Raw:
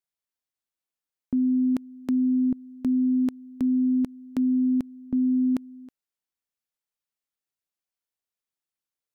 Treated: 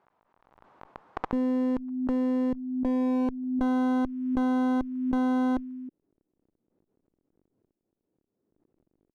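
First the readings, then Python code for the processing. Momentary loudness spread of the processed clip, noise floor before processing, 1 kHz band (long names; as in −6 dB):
7 LU, below −85 dBFS, can't be measured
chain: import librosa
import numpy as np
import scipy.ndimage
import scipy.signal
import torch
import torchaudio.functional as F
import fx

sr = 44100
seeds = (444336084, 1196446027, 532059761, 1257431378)

y = scipy.signal.sosfilt(scipy.signal.butter(2, 110.0, 'highpass', fs=sr, output='sos'), x)
y = fx.dmg_crackle(y, sr, seeds[0], per_s=19.0, level_db=-40.0)
y = fx.filter_sweep_lowpass(y, sr, from_hz=980.0, to_hz=330.0, start_s=2.48, end_s=3.63, q=2.1)
y = fx.clip_asym(y, sr, top_db=-35.5, bottom_db=-19.0)
y = fx.pre_swell(y, sr, db_per_s=44.0)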